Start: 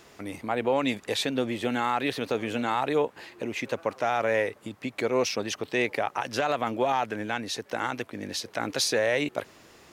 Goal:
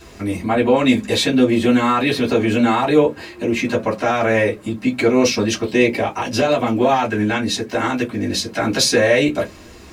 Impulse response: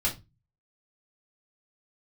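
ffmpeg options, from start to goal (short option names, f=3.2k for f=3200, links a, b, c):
-filter_complex "[0:a]asettb=1/sr,asplit=3[a][b][c];[a]atrim=end=5.694[d];[b]atrim=start=5.69:end=6.75,asetpts=PTS-STARTPTS,afade=t=in:d=0.004:c=qsin,afade=t=out:st=1.056:d=0.004:c=qsin,equalizer=f=1.5k:t=o:w=0.91:g=-5[e];[c]atrim=start=6.746[f];[d][e]acrossfade=d=0.004:c1=hsin:c2=qsin[g];[g][f]acrossfade=d=0.004:c1=qsin:c2=hsin[h];[1:a]atrim=start_sample=2205,asetrate=79380,aresample=44100[i];[h][i]afir=irnorm=-1:irlink=0,volume=7.5dB"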